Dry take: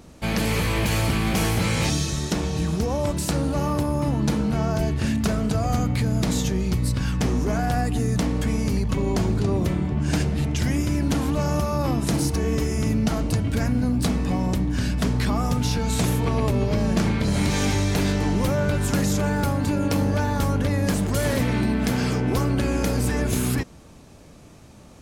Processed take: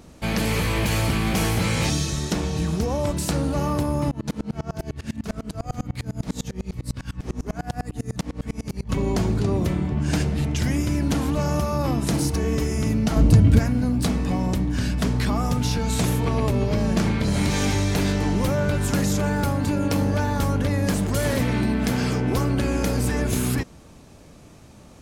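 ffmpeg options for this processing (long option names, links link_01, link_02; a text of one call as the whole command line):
ffmpeg -i in.wav -filter_complex "[0:a]asettb=1/sr,asplit=3[link_01][link_02][link_03];[link_01]atrim=end=4.114[link_04];[link_02]atrim=start=4.11:end=8.91,asetpts=PTS-STARTPTS,afade=type=in:duration=0.004:curve=qsin,afade=type=out:start_time=4.796:duration=0.004:curve=qsin,aeval=exprs='val(0)*pow(10,-30*if(lt(mod(-10*n/s,1),2*abs(-10)/1000),1-mod(-10*n/s,1)/(2*abs(-10)/1000),(mod(-10*n/s,1)-2*abs(-10)/1000)/(1-2*abs(-10)/1000))/20)':channel_layout=same[link_05];[link_03]atrim=start=8.906[link_06];[link_04][link_05]acrossfade=duration=0.004:curve1=hsin:curve2=qsin[link_07];[link_07][link_06]acrossfade=duration=0.004:curve1=qsin:curve2=hsin,asettb=1/sr,asplit=3[link_08][link_09][link_10];[link_08]atrim=end=13.164[link_11];[link_09]atrim=start=13.16:end=13.59,asetpts=PTS-STARTPTS,afade=type=in:duration=0.004:curve=qsin,afade=type=out:start_time=0.426:duration=0.004:curve=qsin,lowshelf=frequency=330:gain=11[link_12];[link_10]atrim=start=13.586[link_13];[link_11][link_12]acrossfade=duration=0.004:curve1=hsin:curve2=qsin[link_14];[link_14][link_13]acrossfade=duration=0.004:curve1=qsin:curve2=hsin" out.wav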